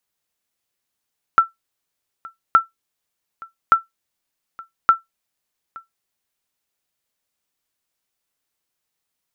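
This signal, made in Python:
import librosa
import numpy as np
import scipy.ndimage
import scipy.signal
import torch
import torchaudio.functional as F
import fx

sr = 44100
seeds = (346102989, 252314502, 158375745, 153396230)

y = fx.sonar_ping(sr, hz=1340.0, decay_s=0.15, every_s=1.17, pings=4, echo_s=0.87, echo_db=-24.0, level_db=-3.0)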